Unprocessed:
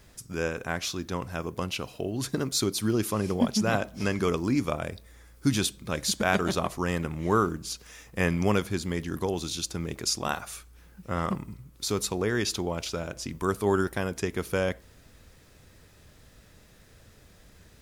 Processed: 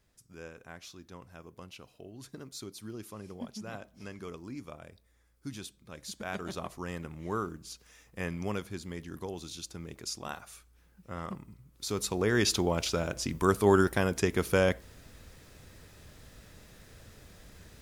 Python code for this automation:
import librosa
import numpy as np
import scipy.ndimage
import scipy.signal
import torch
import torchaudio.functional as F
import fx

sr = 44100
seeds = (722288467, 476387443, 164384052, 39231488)

y = fx.gain(x, sr, db=fx.line((5.9, -16.5), (6.64, -10.0), (11.55, -10.0), (12.44, 2.0)))